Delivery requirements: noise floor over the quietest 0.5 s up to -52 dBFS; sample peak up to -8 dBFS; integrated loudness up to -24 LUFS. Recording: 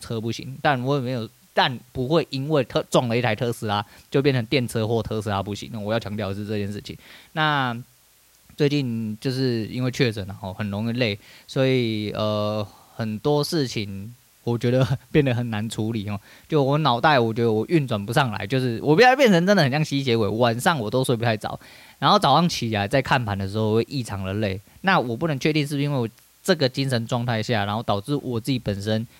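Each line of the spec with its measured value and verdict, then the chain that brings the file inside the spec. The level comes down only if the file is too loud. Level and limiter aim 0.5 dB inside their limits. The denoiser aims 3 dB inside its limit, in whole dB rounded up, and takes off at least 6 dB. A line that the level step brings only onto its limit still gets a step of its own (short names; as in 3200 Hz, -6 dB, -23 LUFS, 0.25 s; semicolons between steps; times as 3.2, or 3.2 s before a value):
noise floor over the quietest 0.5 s -57 dBFS: OK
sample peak -5.5 dBFS: fail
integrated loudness -22.5 LUFS: fail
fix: gain -2 dB; limiter -8.5 dBFS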